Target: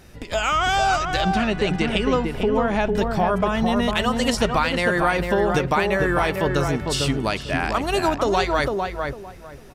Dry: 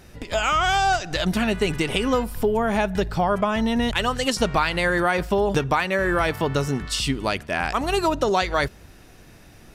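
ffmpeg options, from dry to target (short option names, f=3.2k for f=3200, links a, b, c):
-filter_complex "[0:a]asettb=1/sr,asplit=3[a][b][c];[a]atrim=end=1.214[d];[b]atrim=start=1.21:end=2.92,asetpts=PTS-STARTPTS,afade=t=in:d=0.004:c=qsin,afade=t=out:st=1.706:d=0.004:c=qsin,lowpass=5.9k[e];[c]atrim=start=2.916[f];[d][e]acrossfade=d=0.004:c1=hsin:c2=qsin[g];[g][f]acrossfade=d=0.004:c1=qsin:c2=hsin,asplit=2[h][i];[i]adelay=451,lowpass=f=1.4k:p=1,volume=-3dB,asplit=2[j][k];[k]adelay=451,lowpass=f=1.4k:p=1,volume=0.23,asplit=2[l][m];[m]adelay=451,lowpass=f=1.4k:p=1,volume=0.23[n];[h][j][l][n]amix=inputs=4:normalize=0"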